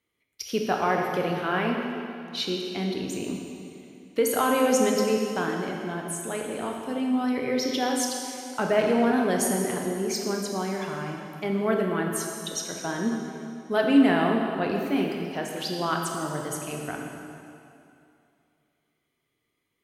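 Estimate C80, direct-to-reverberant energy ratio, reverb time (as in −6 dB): 3.5 dB, 0.5 dB, 2.6 s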